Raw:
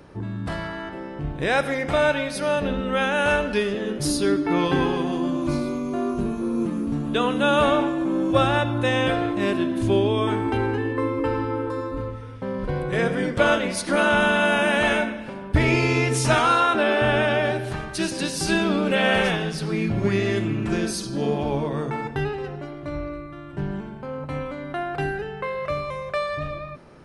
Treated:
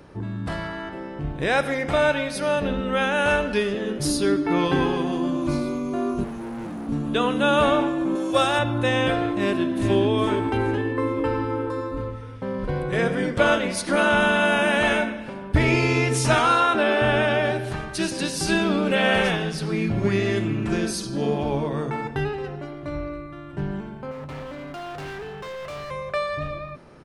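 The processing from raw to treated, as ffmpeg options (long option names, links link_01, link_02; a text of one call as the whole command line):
ffmpeg -i in.wav -filter_complex "[0:a]asettb=1/sr,asplit=3[link_01][link_02][link_03];[link_01]atrim=end=6.244[link_04];[link_02]atrim=start=6.24:end=6.89,asetpts=PTS-STARTPTS,afade=type=in:duration=0.004:curve=qsin,afade=type=out:start_time=0.646:duration=0.004:curve=qsin,asoftclip=type=hard:threshold=-31dB[link_05];[link_03]atrim=start=6.886[link_06];[link_04][link_05]acrossfade=duration=0.004:curve1=hsin:curve2=qsin[link_07];[link_07][link_06]acrossfade=duration=0.004:curve1=qsin:curve2=hsin,asettb=1/sr,asplit=3[link_08][link_09][link_10];[link_08]atrim=end=8.154[link_11];[link_09]atrim=start=8.15:end=8.59,asetpts=PTS-STARTPTS,afade=type=in:duration=0.004:curve=qsin,afade=type=out:start_time=0.436:duration=0.004:curve=qsin,bass=frequency=250:gain=-12,treble=frequency=4000:gain=10[link_12];[link_10]atrim=start=8.586[link_13];[link_11][link_12]acrossfade=duration=0.004:curve1=hsin:curve2=qsin[link_14];[link_14][link_13]acrossfade=duration=0.004:curve1=qsin:curve2=hsin,asplit=2[link_15][link_16];[link_16]afade=type=in:start_time=9.35:duration=0.01,afade=type=out:start_time=9.97:duration=0.01,aecho=0:1:420|840|1260|1680|2100:0.421697|0.189763|0.0853935|0.0384271|0.0172922[link_17];[link_15][link_17]amix=inputs=2:normalize=0,asettb=1/sr,asplit=3[link_18][link_19][link_20];[link_18]atrim=end=24.114[link_21];[link_19]atrim=start=24.11:end=25.91,asetpts=PTS-STARTPTS,afade=type=in:duration=0.004:curve=qsin,afade=type=out:start_time=1.796:duration=0.004:curve=qsin,volume=32.5dB,asoftclip=hard,volume=-32.5dB[link_22];[link_20]atrim=start=25.906[link_23];[link_21][link_22]acrossfade=duration=0.004:curve1=hsin:curve2=qsin[link_24];[link_24][link_23]acrossfade=duration=0.004:curve1=qsin:curve2=hsin" out.wav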